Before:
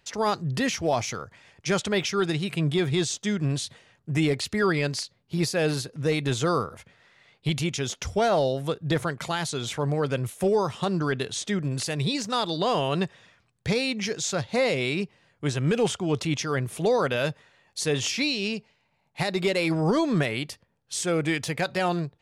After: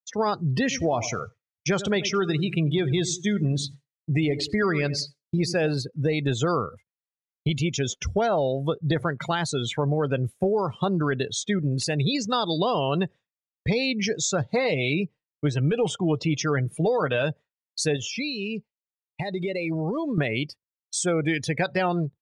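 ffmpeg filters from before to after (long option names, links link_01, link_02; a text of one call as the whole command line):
ffmpeg -i in.wav -filter_complex "[0:a]asplit=3[link_01][link_02][link_03];[link_01]afade=type=out:start_time=0.7:duration=0.02[link_04];[link_02]aecho=1:1:92|184|276|368:0.2|0.0858|0.0369|0.0159,afade=type=in:start_time=0.7:duration=0.02,afade=type=out:start_time=5.68:duration=0.02[link_05];[link_03]afade=type=in:start_time=5.68:duration=0.02[link_06];[link_04][link_05][link_06]amix=inputs=3:normalize=0,asettb=1/sr,asplit=3[link_07][link_08][link_09];[link_07]atrim=end=14.404[link_10];[link_08]atrim=start=14.4:end=17.23,asetpts=PTS-STARTPTS,afade=type=in:duration=0.004:curve=qsin,afade=type=out:start_time=2.826:duration=0.004:curve=qsin,aecho=1:1:6.5:0.39,atrim=end_sample=124803[link_11];[link_09]atrim=start=17.226[link_12];[link_10][link_11]acrossfade=duration=0.004:curve1=hsin:curve2=qsin[link_13];[link_13][link_12]acrossfade=duration=0.004:curve1=qsin:curve2=hsin,asettb=1/sr,asplit=3[link_14][link_15][link_16];[link_14]atrim=end=17.964[link_17];[link_15]atrim=start=17.96:end=20.18,asetpts=PTS-STARTPTS,afade=type=in:duration=0.004:curve=qsin,afade=type=out:start_time=2.216:duration=0.004:curve=qsin,acompressor=threshold=-30dB:ratio=4:attack=3.2:release=140:knee=1:detection=peak[link_18];[link_16]atrim=start=20.176[link_19];[link_17][link_18]acrossfade=duration=0.004:curve1=hsin:curve2=qsin[link_20];[link_20][link_19]acrossfade=duration=0.004:curve1=qsin:curve2=hsin,afftdn=noise_reduction=23:noise_floor=-33,agate=range=-33dB:threshold=-40dB:ratio=3:detection=peak,acompressor=threshold=-25dB:ratio=6,volume=5dB" out.wav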